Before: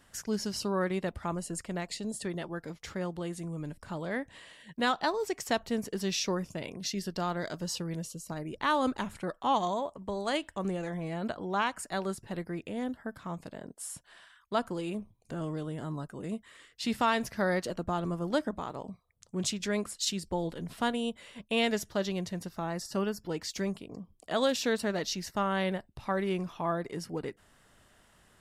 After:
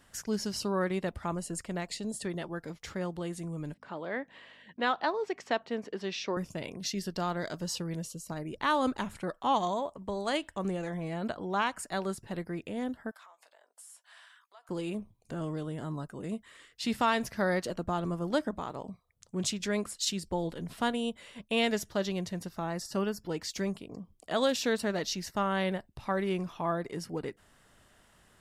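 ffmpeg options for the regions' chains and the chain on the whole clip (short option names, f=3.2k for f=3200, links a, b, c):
-filter_complex "[0:a]asettb=1/sr,asplit=3[a][b][c];[a]atrim=end=3.744[d];[b]atrim=start=3.74:end=6.37,asetpts=PTS-STARTPTS,afade=t=in:d=0.004:c=qsin,afade=t=out:st=2.626:d=0.004:c=qsin,aeval=exprs='val(0)+0.00178*(sin(2*PI*50*n/s)+sin(2*PI*2*50*n/s)/2+sin(2*PI*3*50*n/s)/3+sin(2*PI*4*50*n/s)/4+sin(2*PI*5*50*n/s)/5)':c=same,highpass=280,lowpass=3.3k[e];[c]atrim=start=6.366[f];[d][e]acrossfade=d=0.004:c1=hsin:c2=qsin[g];[g][f]acrossfade=d=0.004:c1=qsin:c2=hsin,asettb=1/sr,asplit=3[h][i][j];[h]atrim=end=13.114[k];[i]atrim=start=13.11:end=14.69,asetpts=PTS-STARTPTS,afade=t=in:d=0.004:c=qsin,afade=t=out:st=1.576:d=0.004:c=qsin,acompressor=threshold=-48dB:ratio=12:attack=3.2:release=140:knee=1:detection=peak,highpass=f=680:w=0.5412,highpass=f=680:w=1.3066,asplit=2[l][m];[m]adelay=15,volume=-12dB[n];[l][n]amix=inputs=2:normalize=0,atrim=end_sample=69678[o];[j]atrim=start=14.686[p];[k][o]acrossfade=d=0.004:c1=hsin:c2=qsin[q];[q][p]acrossfade=d=0.004:c1=qsin:c2=hsin"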